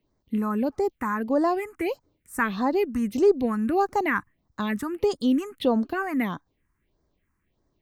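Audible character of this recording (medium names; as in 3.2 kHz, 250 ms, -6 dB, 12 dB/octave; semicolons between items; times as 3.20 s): phasing stages 4, 1.6 Hz, lowest notch 550–2700 Hz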